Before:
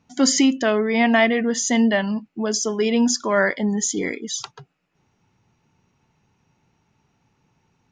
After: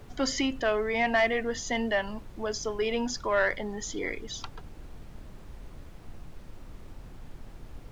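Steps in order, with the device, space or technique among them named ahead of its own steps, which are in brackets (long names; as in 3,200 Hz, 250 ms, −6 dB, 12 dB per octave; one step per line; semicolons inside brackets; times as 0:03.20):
aircraft cabin announcement (band-pass filter 400–3,900 Hz; soft clipping −9.5 dBFS, distortion −19 dB; brown noise bed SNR 10 dB)
level −4.5 dB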